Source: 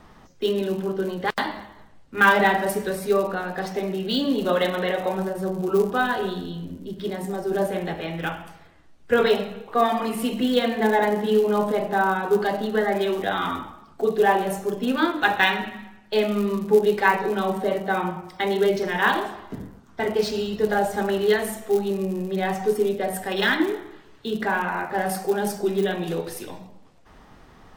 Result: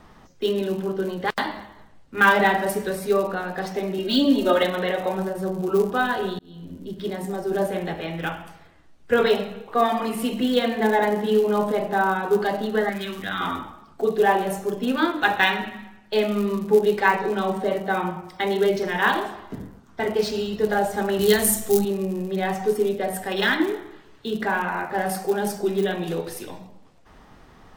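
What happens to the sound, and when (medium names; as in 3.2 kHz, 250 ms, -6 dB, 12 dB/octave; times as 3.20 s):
3.98–4.63 s: comb 3.2 ms, depth 97%
6.39–6.82 s: fade in
12.89–13.41 s: high-order bell 560 Hz -12 dB
16.99–17.70 s: peaking EQ 12 kHz -10 dB 0.28 oct
21.19–21.85 s: tone controls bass +10 dB, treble +15 dB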